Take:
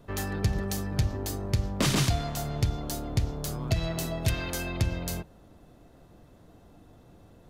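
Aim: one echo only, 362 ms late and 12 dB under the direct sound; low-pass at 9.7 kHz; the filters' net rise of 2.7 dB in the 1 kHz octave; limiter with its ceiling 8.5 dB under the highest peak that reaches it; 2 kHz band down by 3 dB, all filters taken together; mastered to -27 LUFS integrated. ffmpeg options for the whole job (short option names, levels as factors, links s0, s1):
-af "lowpass=9700,equalizer=f=1000:t=o:g=5,equalizer=f=2000:t=o:g=-5.5,alimiter=limit=0.0708:level=0:latency=1,aecho=1:1:362:0.251,volume=2.11"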